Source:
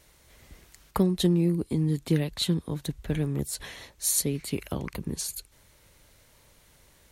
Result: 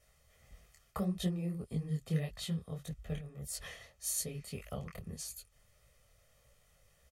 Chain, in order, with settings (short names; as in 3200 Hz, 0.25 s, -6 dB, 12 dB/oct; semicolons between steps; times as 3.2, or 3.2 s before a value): high shelf 12000 Hz -3.5 dB; notch 4000 Hz, Q 6.5; comb 1.6 ms, depth 82%; 3.18–3.76 negative-ratio compressor -32 dBFS, ratio -1; detuned doubles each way 59 cents; gain -8 dB